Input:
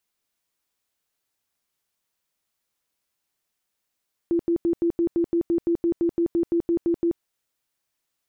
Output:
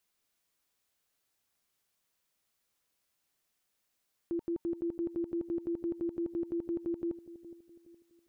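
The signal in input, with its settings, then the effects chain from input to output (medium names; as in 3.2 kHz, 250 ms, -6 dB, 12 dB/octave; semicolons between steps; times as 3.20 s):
tone bursts 339 Hz, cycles 28, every 0.17 s, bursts 17, -18 dBFS
band-stop 910 Hz, Q 29; peak limiter -29.5 dBFS; bucket-brigade echo 416 ms, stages 2048, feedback 39%, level -15 dB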